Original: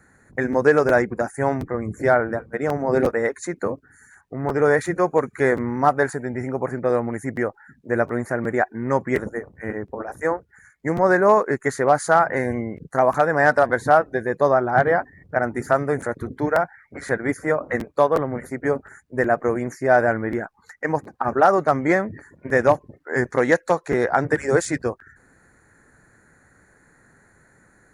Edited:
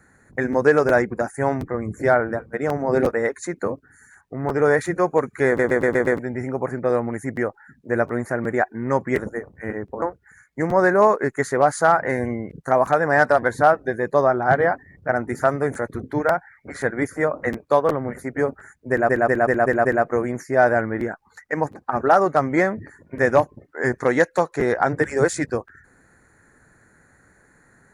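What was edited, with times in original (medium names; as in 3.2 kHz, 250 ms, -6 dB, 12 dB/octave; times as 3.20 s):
5.47 s: stutter in place 0.12 s, 6 plays
10.02–10.29 s: delete
19.17 s: stutter 0.19 s, 6 plays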